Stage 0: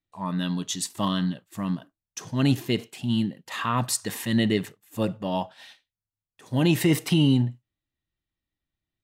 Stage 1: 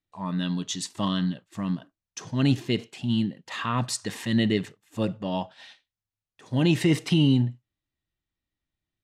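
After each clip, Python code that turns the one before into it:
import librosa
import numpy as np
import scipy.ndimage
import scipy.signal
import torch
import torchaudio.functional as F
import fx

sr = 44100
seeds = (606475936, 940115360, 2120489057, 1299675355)

y = scipy.signal.sosfilt(scipy.signal.butter(2, 6900.0, 'lowpass', fs=sr, output='sos'), x)
y = fx.dynamic_eq(y, sr, hz=900.0, q=0.8, threshold_db=-38.0, ratio=4.0, max_db=-3)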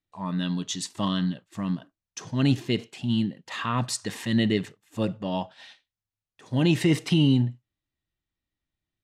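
y = x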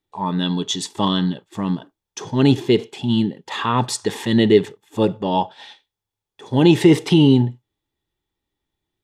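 y = fx.small_body(x, sr, hz=(410.0, 850.0, 3400.0), ring_ms=25, db=12)
y = y * 10.0 ** (4.5 / 20.0)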